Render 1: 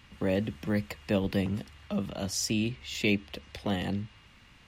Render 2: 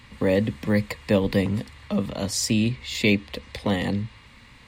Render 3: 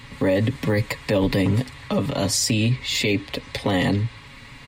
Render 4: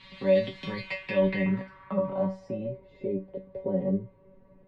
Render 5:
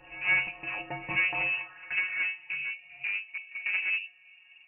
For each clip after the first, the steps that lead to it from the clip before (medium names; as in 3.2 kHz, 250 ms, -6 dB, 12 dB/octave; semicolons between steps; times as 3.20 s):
rippled EQ curve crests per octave 0.98, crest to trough 6 dB; trim +6.5 dB
comb 7.2 ms, depth 59%; peak limiter -18 dBFS, peak gain reduction 11 dB; trim +6 dB
feedback comb 190 Hz, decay 0.26 s, harmonics all, mix 100%; low-pass sweep 3.8 kHz -> 490 Hz, 0.69–2.90 s; feedback comb 290 Hz, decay 0.15 s, harmonics all, mix 50%; trim +7.5 dB
one-sided clip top -33 dBFS; frequency inversion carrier 2.8 kHz; pre-echo 146 ms -20 dB